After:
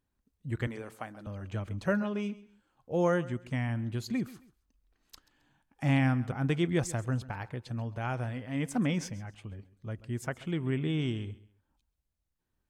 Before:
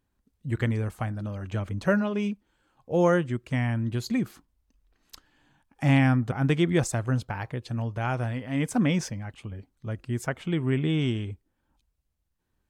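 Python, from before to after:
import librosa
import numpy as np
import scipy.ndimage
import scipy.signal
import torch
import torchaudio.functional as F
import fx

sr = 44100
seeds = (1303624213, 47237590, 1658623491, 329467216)

p1 = fx.highpass(x, sr, hz=300.0, slope=12, at=(0.67, 1.27))
p2 = p1 + fx.echo_feedback(p1, sr, ms=134, feedback_pct=28, wet_db=-18.5, dry=0)
y = F.gain(torch.from_numpy(p2), -5.5).numpy()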